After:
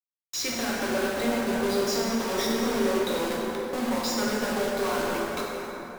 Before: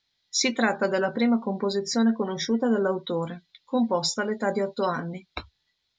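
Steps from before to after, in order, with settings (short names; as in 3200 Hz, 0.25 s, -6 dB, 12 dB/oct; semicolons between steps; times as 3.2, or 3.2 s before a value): steep high-pass 200 Hz 72 dB/oct; notches 60/120/180/240/300/360/420/480/540 Hz; compressor 8:1, threshold -31 dBFS, peak gain reduction 13 dB; companded quantiser 2-bit; plate-style reverb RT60 4.1 s, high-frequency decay 0.45×, DRR -5.5 dB; gain -5 dB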